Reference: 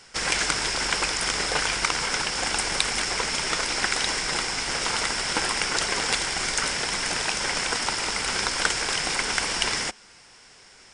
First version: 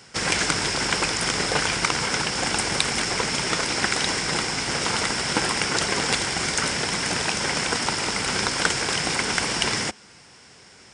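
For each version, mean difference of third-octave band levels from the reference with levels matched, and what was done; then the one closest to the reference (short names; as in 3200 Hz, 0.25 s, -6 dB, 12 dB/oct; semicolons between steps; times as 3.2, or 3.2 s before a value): 2.5 dB: HPF 100 Hz 12 dB/oct; low shelf 300 Hz +11 dB; downsampling 22050 Hz; gain +1 dB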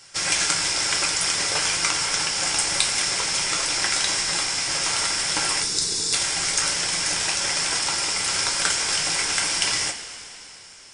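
3.5 dB: high shelf 3300 Hz +9.5 dB; spectral gain 5.61–6.14, 510–3400 Hz -16 dB; two-slope reverb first 0.22 s, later 3.2 s, from -18 dB, DRR 0.5 dB; gain -5 dB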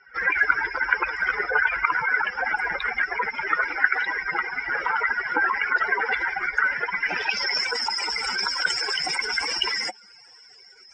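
13.5 dB: spectral contrast raised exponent 3.5; HPF 210 Hz 6 dB/oct; low-pass sweep 1700 Hz -> 8700 Hz, 6.93–7.72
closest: first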